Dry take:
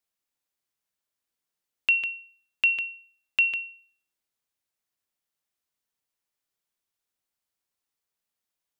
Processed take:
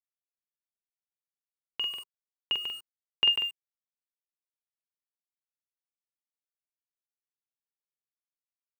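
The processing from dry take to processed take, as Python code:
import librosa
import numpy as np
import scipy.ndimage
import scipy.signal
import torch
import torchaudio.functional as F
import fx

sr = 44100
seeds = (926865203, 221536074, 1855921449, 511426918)

y = fx.doppler_pass(x, sr, speed_mps=17, closest_m=11.0, pass_at_s=3.84)
y = fx.high_shelf(y, sr, hz=2400.0, db=-12.0)
y = fx.doubler(y, sr, ms=46.0, db=-3.5)
y = np.where(np.abs(y) >= 10.0 ** (-48.5 / 20.0), y, 0.0)
y = fx.graphic_eq_15(y, sr, hz=(160, 400, 1000, 2500), db=(5, 12, 11, 4))
y = y * 10.0 ** (3.0 / 20.0)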